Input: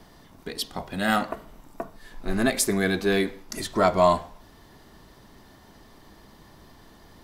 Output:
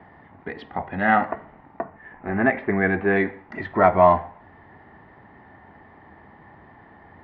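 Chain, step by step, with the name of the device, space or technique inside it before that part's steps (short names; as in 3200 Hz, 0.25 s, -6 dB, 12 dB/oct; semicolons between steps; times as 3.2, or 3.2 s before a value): 1.84–3.16 inverse Chebyshev low-pass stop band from 7300 Hz, stop band 50 dB; bass cabinet (speaker cabinet 82–2200 Hz, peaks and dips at 89 Hz +7 dB, 810 Hz +9 dB, 1900 Hz +9 dB); gain +1.5 dB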